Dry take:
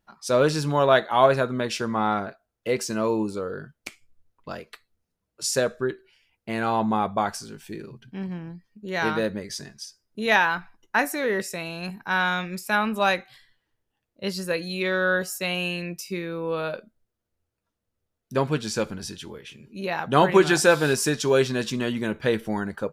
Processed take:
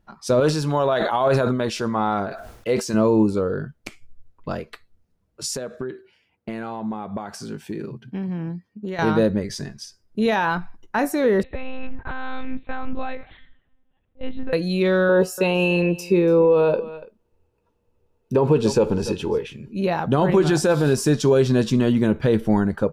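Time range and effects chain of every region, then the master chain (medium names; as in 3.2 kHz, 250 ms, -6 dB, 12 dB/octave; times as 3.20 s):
0.40–2.94 s: bass shelf 450 Hz -9.5 dB + decay stretcher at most 69 dB/s
5.55–8.99 s: high-pass 140 Hz + compression 12:1, threshold -33 dBFS + tape noise reduction on one side only decoder only
11.43–14.53 s: compression 5:1, threshold -33 dBFS + monotone LPC vocoder at 8 kHz 260 Hz
15.09–19.47 s: small resonant body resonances 450/890/2600 Hz, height 13 dB, ringing for 20 ms + delay 287 ms -21.5 dB
whole clip: dynamic bell 2 kHz, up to -6 dB, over -39 dBFS, Q 1.1; peak limiter -17 dBFS; tilt EQ -2 dB/octave; trim +5.5 dB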